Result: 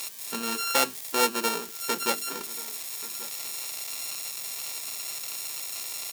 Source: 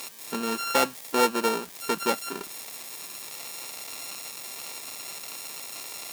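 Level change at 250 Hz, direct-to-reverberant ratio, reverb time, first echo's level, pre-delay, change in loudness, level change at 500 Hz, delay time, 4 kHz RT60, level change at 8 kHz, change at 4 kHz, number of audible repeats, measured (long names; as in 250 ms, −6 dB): −4.5 dB, no reverb audible, no reverb audible, −18.5 dB, no reverb audible, +1.0 dB, −4.0 dB, 1,134 ms, no reverb audible, +4.0 dB, +2.5 dB, 1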